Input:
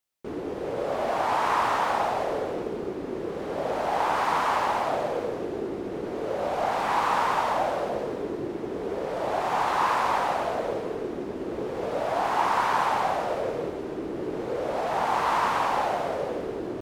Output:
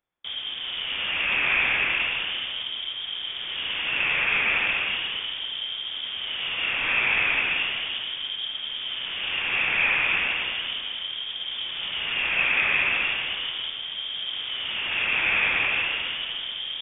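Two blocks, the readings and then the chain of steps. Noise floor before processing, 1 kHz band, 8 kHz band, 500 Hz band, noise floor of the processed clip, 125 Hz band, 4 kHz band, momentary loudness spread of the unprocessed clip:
-35 dBFS, -12.5 dB, under -35 dB, -16.0 dB, -34 dBFS, -6.5 dB, +16.5 dB, 9 LU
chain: peaking EQ 540 Hz -10.5 dB 1.8 oct; frequency inversion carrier 3.5 kHz; trim +6.5 dB

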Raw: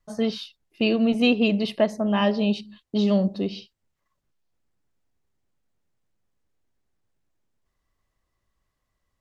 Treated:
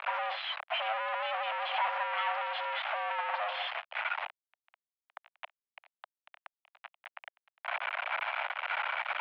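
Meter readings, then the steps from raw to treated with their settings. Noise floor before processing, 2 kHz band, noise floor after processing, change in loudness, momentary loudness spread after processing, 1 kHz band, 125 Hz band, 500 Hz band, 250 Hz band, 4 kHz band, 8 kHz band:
-79 dBFS, +2.0 dB, under -85 dBFS, -10.5 dB, 18 LU, +4.5 dB, under -40 dB, -14.0 dB, under -40 dB, -5.0 dB, no reading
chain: one-bit comparator; mistuned SSB +330 Hz 330–2600 Hz

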